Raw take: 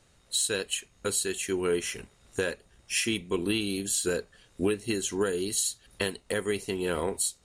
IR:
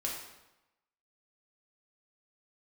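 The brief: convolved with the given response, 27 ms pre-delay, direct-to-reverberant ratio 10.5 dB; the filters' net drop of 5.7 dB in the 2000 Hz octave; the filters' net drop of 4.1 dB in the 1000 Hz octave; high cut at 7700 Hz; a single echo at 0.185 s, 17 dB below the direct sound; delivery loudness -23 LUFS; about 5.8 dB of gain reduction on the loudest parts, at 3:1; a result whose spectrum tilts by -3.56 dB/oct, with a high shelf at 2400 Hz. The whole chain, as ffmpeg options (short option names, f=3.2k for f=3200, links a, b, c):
-filter_complex "[0:a]lowpass=7.7k,equalizer=f=1k:t=o:g=-3,equalizer=f=2k:t=o:g=-4,highshelf=f=2.4k:g=-5,acompressor=threshold=-31dB:ratio=3,aecho=1:1:185:0.141,asplit=2[a][b];[1:a]atrim=start_sample=2205,adelay=27[c];[b][c]afir=irnorm=-1:irlink=0,volume=-13.5dB[d];[a][d]amix=inputs=2:normalize=0,volume=12.5dB"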